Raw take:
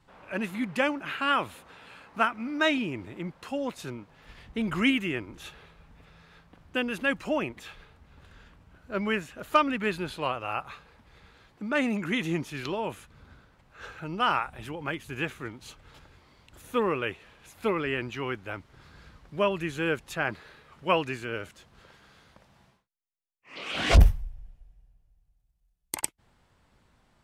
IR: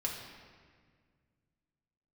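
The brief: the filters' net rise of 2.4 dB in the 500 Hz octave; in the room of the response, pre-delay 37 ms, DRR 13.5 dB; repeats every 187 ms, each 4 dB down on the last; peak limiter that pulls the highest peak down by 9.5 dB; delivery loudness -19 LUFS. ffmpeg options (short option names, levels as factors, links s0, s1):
-filter_complex "[0:a]equalizer=f=500:t=o:g=3,alimiter=limit=0.141:level=0:latency=1,aecho=1:1:187|374|561|748|935|1122|1309|1496|1683:0.631|0.398|0.25|0.158|0.0994|0.0626|0.0394|0.0249|0.0157,asplit=2[s0][s1];[1:a]atrim=start_sample=2205,adelay=37[s2];[s1][s2]afir=irnorm=-1:irlink=0,volume=0.15[s3];[s0][s3]amix=inputs=2:normalize=0,volume=3.35"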